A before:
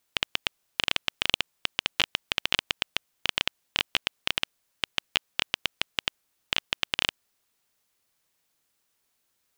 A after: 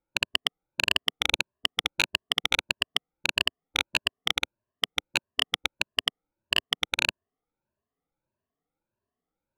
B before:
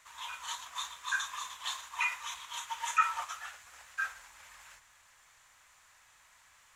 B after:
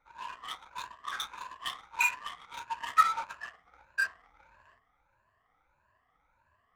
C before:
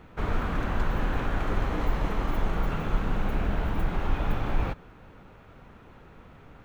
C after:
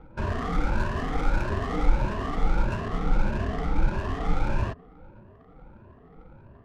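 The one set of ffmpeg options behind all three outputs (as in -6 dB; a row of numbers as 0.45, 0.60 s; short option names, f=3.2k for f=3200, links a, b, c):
-af "afftfilt=real='re*pow(10,17/40*sin(2*PI*(1.4*log(max(b,1)*sr/1024/100)/log(2)-(1.6)*(pts-256)/sr)))':imag='im*pow(10,17/40*sin(2*PI*(1.4*log(max(b,1)*sr/1024/100)/log(2)-(1.6)*(pts-256)/sr)))':win_size=1024:overlap=0.75,adynamicsmooth=sensitivity=6.5:basefreq=830,volume=-1.5dB"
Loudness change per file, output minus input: +1.5, +3.0, +1.5 LU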